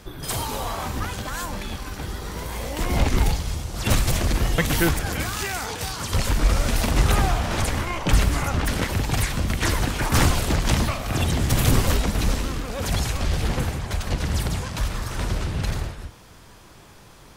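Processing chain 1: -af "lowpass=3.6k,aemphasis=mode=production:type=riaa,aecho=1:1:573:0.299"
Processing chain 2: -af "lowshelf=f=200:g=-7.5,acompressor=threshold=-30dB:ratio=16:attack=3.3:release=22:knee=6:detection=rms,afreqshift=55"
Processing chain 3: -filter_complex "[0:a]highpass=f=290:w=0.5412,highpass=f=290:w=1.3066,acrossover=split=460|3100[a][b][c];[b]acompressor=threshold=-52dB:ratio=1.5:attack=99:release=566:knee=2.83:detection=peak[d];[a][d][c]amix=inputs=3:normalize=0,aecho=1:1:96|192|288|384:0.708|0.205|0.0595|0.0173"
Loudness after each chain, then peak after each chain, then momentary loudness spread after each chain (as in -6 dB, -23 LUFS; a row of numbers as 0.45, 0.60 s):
-27.0, -33.5, -28.5 LUFS; -7.5, -18.5, -10.0 dBFS; 9, 4, 11 LU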